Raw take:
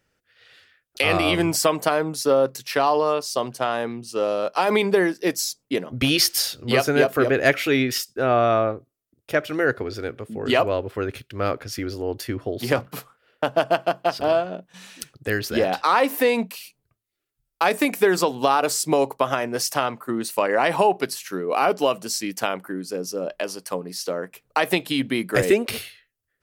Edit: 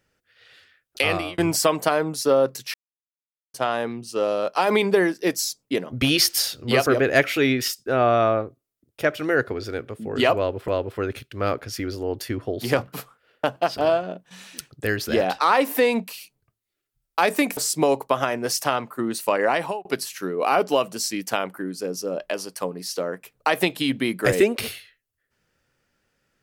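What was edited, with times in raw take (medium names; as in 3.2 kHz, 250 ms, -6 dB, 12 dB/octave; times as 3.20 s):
1.01–1.38 s: fade out
2.74–3.54 s: mute
6.86–7.16 s: delete
10.67–10.98 s: loop, 2 plays
13.55–13.99 s: delete
18.00–18.67 s: delete
20.56–20.95 s: fade out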